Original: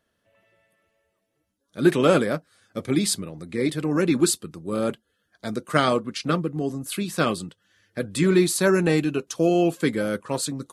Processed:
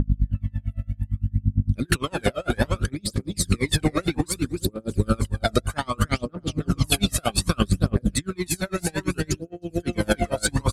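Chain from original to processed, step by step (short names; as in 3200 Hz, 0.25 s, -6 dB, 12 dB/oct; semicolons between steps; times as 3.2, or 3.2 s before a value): hum 50 Hz, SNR 12 dB; in parallel at -12 dB: soft clip -25 dBFS, distortion -5 dB; on the sum: feedback echo 0.311 s, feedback 26%, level -4.5 dB; on a send at -23 dB: reverb RT60 2.0 s, pre-delay 48 ms; on the sum: phaser 0.63 Hz, delay 1.6 ms, feedback 71%; negative-ratio compressor -25 dBFS, ratio -1; dB-linear tremolo 8.8 Hz, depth 32 dB; gain +6 dB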